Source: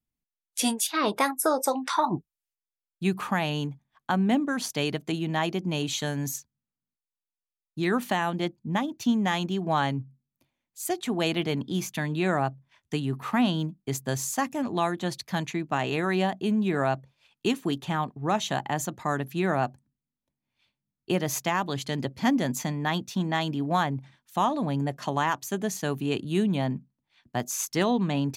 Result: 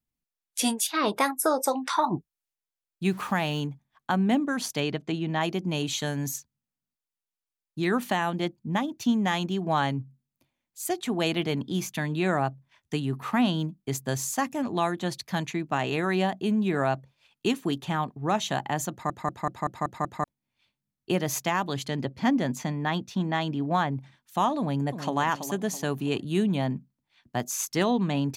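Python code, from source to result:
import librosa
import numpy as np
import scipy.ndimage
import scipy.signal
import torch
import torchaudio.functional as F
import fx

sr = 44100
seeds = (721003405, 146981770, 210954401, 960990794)

y = fx.sample_gate(x, sr, floor_db=-43.5, at=(3.05, 3.6))
y = fx.air_absorb(y, sr, metres=94.0, at=(4.8, 5.41))
y = fx.lowpass(y, sr, hz=3700.0, slope=6, at=(21.88, 23.93))
y = fx.echo_throw(y, sr, start_s=24.59, length_s=0.59, ms=330, feedback_pct=40, wet_db=-9.0)
y = fx.edit(y, sr, fx.stutter_over(start_s=18.91, slice_s=0.19, count=7), tone=tone)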